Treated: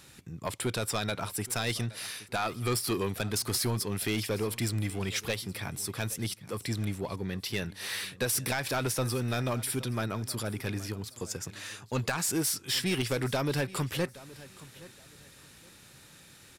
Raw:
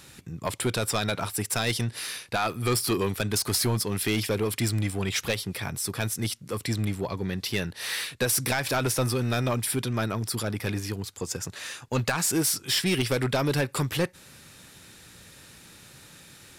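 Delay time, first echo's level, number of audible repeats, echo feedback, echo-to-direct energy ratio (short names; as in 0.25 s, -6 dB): 0.821 s, -19.0 dB, 2, 25%, -19.0 dB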